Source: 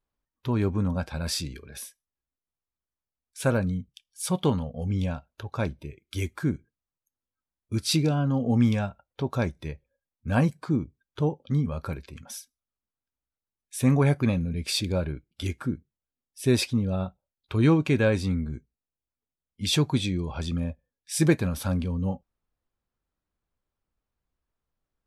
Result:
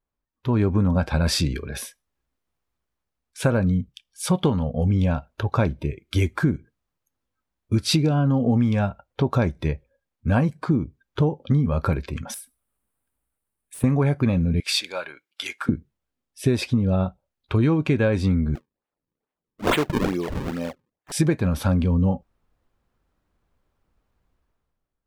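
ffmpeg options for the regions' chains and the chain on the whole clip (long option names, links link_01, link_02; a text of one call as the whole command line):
ffmpeg -i in.wav -filter_complex "[0:a]asettb=1/sr,asplit=3[link_01][link_02][link_03];[link_01]atrim=end=12.344[link_04];[link_02]atrim=start=12.34:end=13.84,asetpts=PTS-STARTPTS,afade=type=in:duration=0.004:curve=qsin,afade=type=out:start_time=1.496:duration=0.004:curve=qsin,highshelf=frequency=7500:width_type=q:width=3:gain=8.5,asoftclip=type=hard:threshold=-27.5dB,acompressor=threshold=-39dB:ratio=12:attack=3.2:release=140:knee=1:detection=peak[link_05];[link_03]atrim=start=13.836[link_06];[link_04][link_05]acrossfade=duration=0.004:curve1=hsin:curve2=qsin[link_07];[link_07][link_06]acrossfade=duration=0.004:curve1=qsin:curve2=hsin,asettb=1/sr,asplit=3[link_08][link_09][link_10];[link_08]atrim=end=14.604[link_11];[link_09]atrim=start=14.6:end=15.69,asetpts=PTS-STARTPTS,afade=type=in:duration=0.004:curve=qsin,afade=type=out:start_time=1.086:duration=0.004:curve=qsin,highpass=1200,asoftclip=type=hard:threshold=-16dB[link_12];[link_10]atrim=start=15.686[link_13];[link_11][link_12]acrossfade=duration=0.004:curve1=hsin:curve2=qsin[link_14];[link_14][link_13]acrossfade=duration=0.004:curve1=qsin:curve2=hsin,asettb=1/sr,asplit=3[link_15][link_16][link_17];[link_15]atrim=end=18.554[link_18];[link_16]atrim=start=18.55:end=21.12,asetpts=PTS-STARTPTS,afade=type=in:duration=0.004:curve=qsin,afade=type=out:start_time=2.566:duration=0.004:curve=qsin,highpass=410,lowpass=5100,acrusher=samples=37:mix=1:aa=0.000001:lfo=1:lforange=59.2:lforate=2.3[link_19];[link_17]atrim=start=21.116[link_20];[link_18][link_19]acrossfade=duration=0.004:curve1=hsin:curve2=qsin[link_21];[link_21][link_20]acrossfade=duration=0.004:curve1=qsin:curve2=hsin,dynaudnorm=framelen=110:gausssize=11:maxgain=14dB,highshelf=frequency=3800:gain=-10.5,acompressor=threshold=-16dB:ratio=10" out.wav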